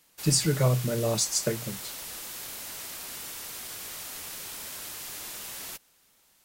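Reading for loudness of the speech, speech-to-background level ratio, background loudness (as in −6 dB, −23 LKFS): −26.0 LKFS, 11.0 dB, −37.0 LKFS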